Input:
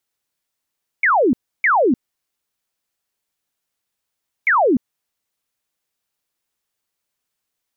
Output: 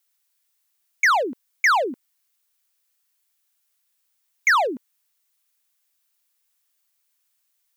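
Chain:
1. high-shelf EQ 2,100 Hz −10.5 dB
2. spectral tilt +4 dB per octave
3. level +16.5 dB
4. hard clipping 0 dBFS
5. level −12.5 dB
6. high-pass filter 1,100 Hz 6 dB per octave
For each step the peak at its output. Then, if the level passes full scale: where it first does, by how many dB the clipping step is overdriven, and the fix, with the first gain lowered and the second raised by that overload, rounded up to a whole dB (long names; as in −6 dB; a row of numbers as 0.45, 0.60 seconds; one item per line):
−11.5, −12.5, +4.0, 0.0, −12.5, −11.0 dBFS
step 3, 4.0 dB
step 3 +12.5 dB, step 5 −8.5 dB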